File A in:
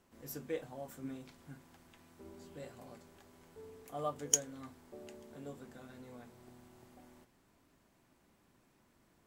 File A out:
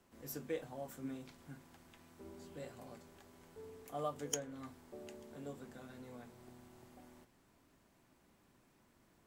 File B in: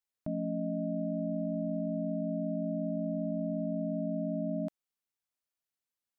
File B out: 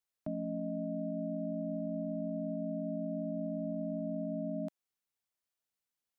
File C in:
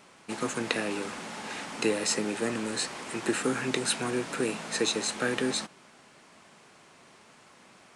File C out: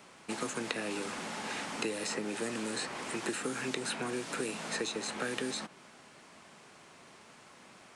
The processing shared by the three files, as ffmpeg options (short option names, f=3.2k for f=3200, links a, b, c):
-filter_complex "[0:a]acrossover=split=150|3000[a][b][c];[a]acompressor=threshold=-56dB:ratio=4[d];[b]acompressor=threshold=-34dB:ratio=4[e];[c]acompressor=threshold=-40dB:ratio=4[f];[d][e][f]amix=inputs=3:normalize=0"